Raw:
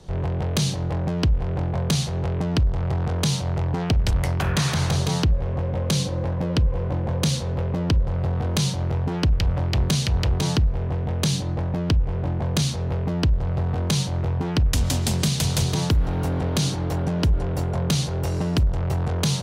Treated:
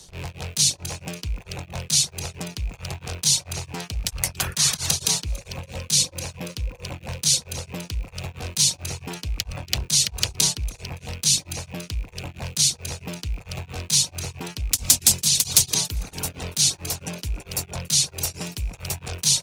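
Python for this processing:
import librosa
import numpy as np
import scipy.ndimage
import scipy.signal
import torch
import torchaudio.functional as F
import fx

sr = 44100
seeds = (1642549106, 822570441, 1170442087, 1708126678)

p1 = fx.rattle_buzz(x, sr, strikes_db=-26.0, level_db=-29.0)
p2 = fx.bass_treble(p1, sr, bass_db=0, treble_db=13)
p3 = fx.echo_alternate(p2, sr, ms=142, hz=1400.0, feedback_pct=58, wet_db=-10.5)
p4 = fx.dereverb_blind(p3, sr, rt60_s=0.78)
p5 = (np.mod(10.0 ** (8.0 / 20.0) * p4 + 1.0, 2.0) - 1.0) / 10.0 ** (8.0 / 20.0)
p6 = p4 + (p5 * 10.0 ** (-5.5 / 20.0))
p7 = fx.tilt_shelf(p6, sr, db=-6.0, hz=1500.0)
p8 = p7 * np.abs(np.cos(np.pi * 4.5 * np.arange(len(p7)) / sr))
y = p8 * 10.0 ** (-4.0 / 20.0)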